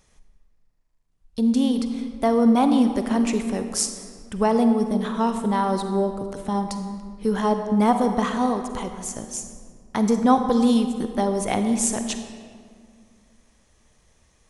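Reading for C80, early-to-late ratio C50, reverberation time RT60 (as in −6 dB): 8.5 dB, 7.5 dB, 2.1 s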